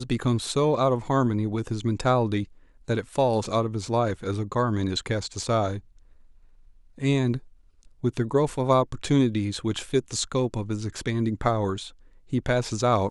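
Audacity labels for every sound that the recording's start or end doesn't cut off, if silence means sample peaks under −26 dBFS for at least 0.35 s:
2.890000	5.770000	sound
7.030000	7.370000	sound
8.040000	11.790000	sound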